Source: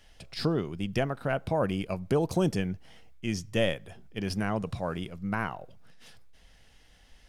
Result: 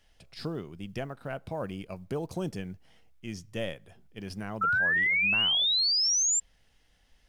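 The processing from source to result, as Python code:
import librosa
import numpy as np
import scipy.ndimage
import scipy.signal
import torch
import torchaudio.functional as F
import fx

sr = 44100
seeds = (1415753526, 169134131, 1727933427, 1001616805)

y = fx.quant_companded(x, sr, bits=8)
y = fx.spec_paint(y, sr, seeds[0], shape='rise', start_s=4.61, length_s=1.79, low_hz=1300.0, high_hz=7500.0, level_db=-18.0)
y = F.gain(torch.from_numpy(y), -7.5).numpy()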